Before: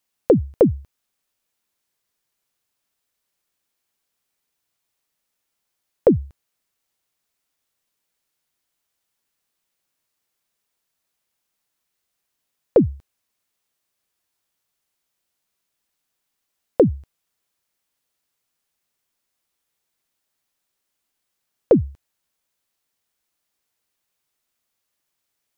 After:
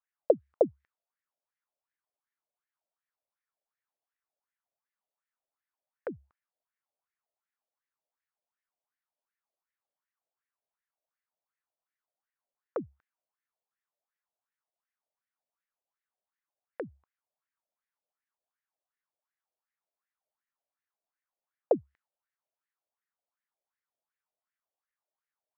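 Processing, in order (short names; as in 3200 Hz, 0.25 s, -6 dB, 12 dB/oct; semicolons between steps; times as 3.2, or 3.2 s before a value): wah 2.7 Hz 590–1900 Hz, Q 4.7; mismatched tape noise reduction decoder only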